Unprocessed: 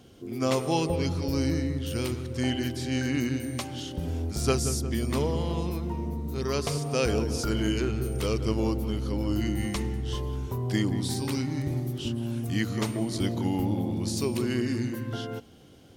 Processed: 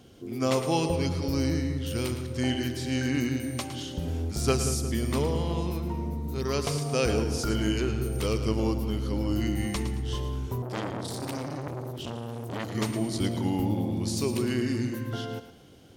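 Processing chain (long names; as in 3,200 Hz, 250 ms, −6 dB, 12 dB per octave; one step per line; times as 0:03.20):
feedback echo with a high-pass in the loop 111 ms, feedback 34%, level −10.5 dB
0:10.62–0:12.75: saturating transformer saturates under 1,600 Hz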